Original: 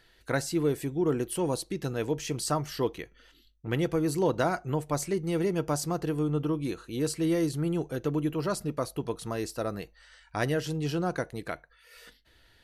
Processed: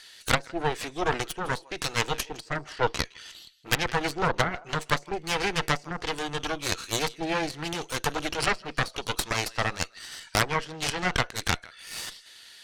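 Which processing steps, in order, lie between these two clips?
frequency weighting ITU-R 468; low-pass that closes with the level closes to 660 Hz, closed at -24.5 dBFS; treble shelf 6.8 kHz +8 dB; on a send: thinning echo 161 ms, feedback 34%, high-pass 1.1 kHz, level -17.5 dB; on the sum: Chebyshev shaper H 8 -8 dB, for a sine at -12.5 dBFS; trim +4.5 dB

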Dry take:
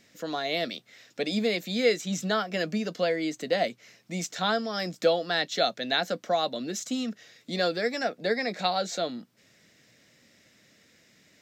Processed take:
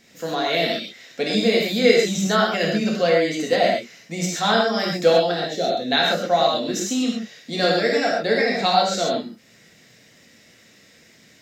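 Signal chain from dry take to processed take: 5.31–5.92 s: FFT filter 480 Hz 0 dB, 1.3 kHz -15 dB, 10 kHz -5 dB; gated-style reverb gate 160 ms flat, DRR -3.5 dB; trim +3.5 dB

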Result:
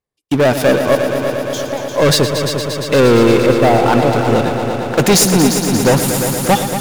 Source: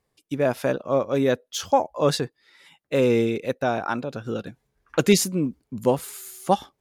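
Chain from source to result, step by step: 3.46–3.93 s: low-pass 1.1 kHz 24 dB/octave; waveshaping leveller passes 5; 0.95–1.98 s: compression 6:1, threshold -26 dBFS, peak gain reduction 16.5 dB; on a send: multi-head delay 116 ms, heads all three, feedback 75%, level -12 dB; on the sum: trim -1.5 dB

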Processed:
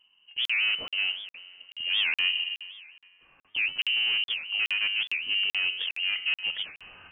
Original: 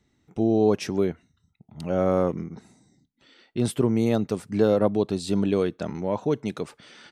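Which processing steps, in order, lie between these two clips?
bass shelf 190 Hz +11.5 dB; in parallel at -3 dB: gain riding within 5 dB 2 s; on the sum: saturation -13.5 dBFS, distortion -8 dB; feedback comb 91 Hz, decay 1.6 s, harmonics all, mix 70%; on a send: thinning echo 264 ms, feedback 70%, high-pass 390 Hz, level -23 dB; on the sum: frequency inversion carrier 3 kHz; crackling interface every 0.42 s, samples 2048, zero, from 0.46 s; warped record 78 rpm, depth 250 cents

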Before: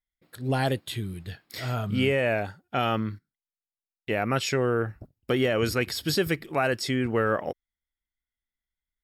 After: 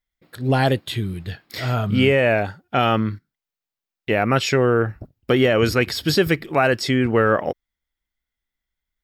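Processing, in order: peaking EQ 9.9 kHz -7 dB 1.1 oct; trim +7.5 dB

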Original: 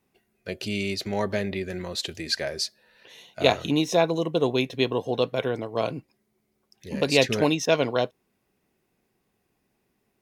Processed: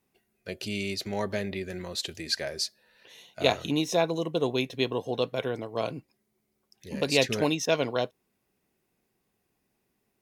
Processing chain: treble shelf 5.2 kHz +4.5 dB; trim -4 dB

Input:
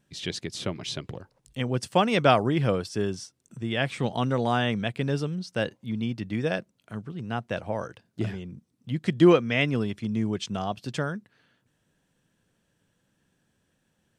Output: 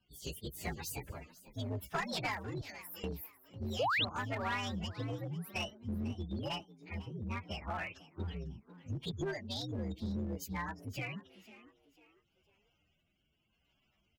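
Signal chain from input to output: frequency axis rescaled in octaves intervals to 129%; 2.61–3.04 s: pre-emphasis filter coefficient 0.97; spectral gate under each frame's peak -25 dB strong; graphic EQ 125/250/500/2000/4000/8000 Hz -7/-5/-6/+7/+4/-10 dB; compression 5:1, threshold -36 dBFS, peak gain reduction 16 dB; rotary cabinet horn 0.85 Hz; one-sided clip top -38.5 dBFS; 3.79–4.05 s: painted sound rise 430–4300 Hz -35 dBFS; frequency-shifting echo 498 ms, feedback 35%, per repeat +90 Hz, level -17.5 dB; trim +3.5 dB

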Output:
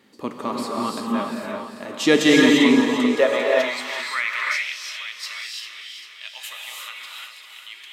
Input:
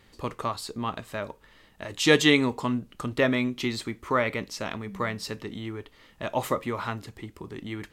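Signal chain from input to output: two-band feedback delay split 330 Hz, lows 199 ms, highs 396 ms, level -9 dB; high-pass sweep 240 Hz -> 2.9 kHz, 2.66–4.47 s; gated-style reverb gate 370 ms rising, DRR -2 dB

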